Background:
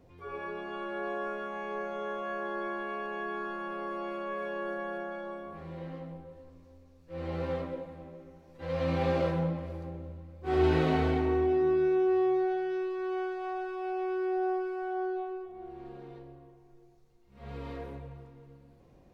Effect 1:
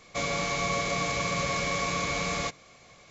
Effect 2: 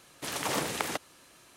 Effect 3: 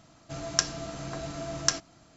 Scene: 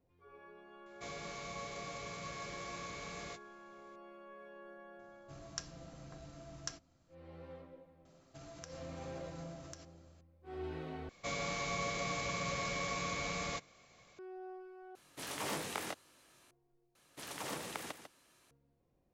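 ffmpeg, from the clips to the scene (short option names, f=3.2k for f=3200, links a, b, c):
-filter_complex "[1:a]asplit=2[a][b];[3:a]asplit=2[c][d];[2:a]asplit=2[e][f];[0:a]volume=-18dB[g];[a]asplit=2[h][i];[i]adelay=19,volume=-12dB[j];[h][j]amix=inputs=2:normalize=0[k];[c]lowshelf=f=160:g=8[l];[d]acompressor=threshold=-37dB:ratio=6:attack=3.2:release=140:knee=1:detection=peak[m];[e]flanger=delay=19.5:depth=3:speed=1.7[n];[f]aecho=1:1:148:0.335[o];[g]asplit=4[p][q][r][s];[p]atrim=end=11.094[t];[b]atrim=end=3.1,asetpts=PTS-STARTPTS,volume=-9dB[u];[q]atrim=start=14.186:end=14.954[v];[n]atrim=end=1.56,asetpts=PTS-STARTPTS,volume=-5dB[w];[r]atrim=start=16.506:end=16.954[x];[o]atrim=end=1.56,asetpts=PTS-STARTPTS,volume=-11.5dB[y];[s]atrim=start=18.506[z];[k]atrim=end=3.1,asetpts=PTS-STARTPTS,volume=-16.5dB,afade=t=in:d=0.004:c=hsin,afade=t=out:st=3.096:d=0.004:c=hsin,adelay=860[aa];[l]atrim=end=2.16,asetpts=PTS-STARTPTS,volume=-18dB,afade=t=in:d=0.004:c=hsin,afade=t=out:st=2.156:d=0.004:c=hsin,adelay=4990[ab];[m]atrim=end=2.16,asetpts=PTS-STARTPTS,volume=-11dB,afade=t=in:d=0.004:c=hsin,afade=t=out:st=2.156:d=0.004:c=hsin,adelay=8050[ac];[t][u]acrossfade=d=0.004:c1=hsin:c2=hsin[ad];[ad][v]acrossfade=d=0.004:c1=hsin:c2=hsin[ae];[ae][w]acrossfade=d=0.004:c1=hsin:c2=hsin[af];[af][x]acrossfade=d=0.004:c1=hsin:c2=hsin[ag];[ag][y]acrossfade=d=0.004:c1=hsin:c2=hsin[ah];[ah][z]acrossfade=d=0.004:c1=hsin:c2=hsin[ai];[ai][aa][ab][ac]amix=inputs=4:normalize=0"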